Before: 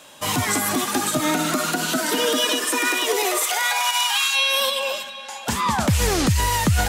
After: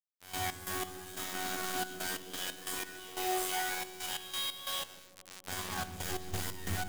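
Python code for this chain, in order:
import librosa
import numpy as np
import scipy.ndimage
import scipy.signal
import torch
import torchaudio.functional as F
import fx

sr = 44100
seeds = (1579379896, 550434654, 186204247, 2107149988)

p1 = fx.peak_eq(x, sr, hz=6300.0, db=-2.5, octaves=0.43)
p2 = fx.over_compress(p1, sr, threshold_db=-24.0, ratio=-0.5)
p3 = p1 + (p2 * 10.0 ** (0.0 / 20.0))
p4 = fx.robotise(p3, sr, hz=92.5)
p5 = fx.resonator_bank(p4, sr, root=40, chord='minor', decay_s=0.82)
p6 = fx.quant_dither(p5, sr, seeds[0], bits=6, dither='none')
p7 = fx.step_gate(p6, sr, bpm=90, pattern='x.x.x..xxxx.', floor_db=-12.0, edge_ms=4.5)
y = p7 + fx.echo_wet_lowpass(p7, sr, ms=157, feedback_pct=66, hz=460.0, wet_db=-9.0, dry=0)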